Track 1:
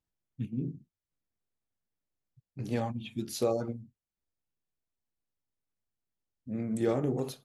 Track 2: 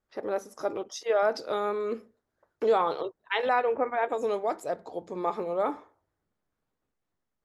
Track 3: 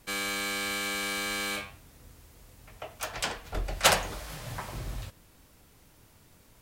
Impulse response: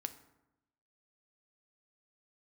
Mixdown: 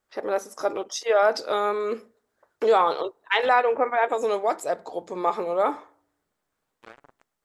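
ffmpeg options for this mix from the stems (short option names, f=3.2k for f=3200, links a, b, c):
-filter_complex "[0:a]equalizer=f=850:w=0.76:g=5.5,acrusher=bits=2:mix=0:aa=0.5,volume=-17.5dB,asplit=2[a][b];[b]volume=-14dB[c];[1:a]equalizer=f=8k:t=o:w=0.24:g=4,volume=2dB,asplit=2[d][e];[e]volume=-23dB[f];[3:a]atrim=start_sample=2205[g];[c][f]amix=inputs=2:normalize=0[h];[h][g]afir=irnorm=-1:irlink=0[i];[a][d][i]amix=inputs=3:normalize=0,lowshelf=f=320:g=-10.5,acontrast=24"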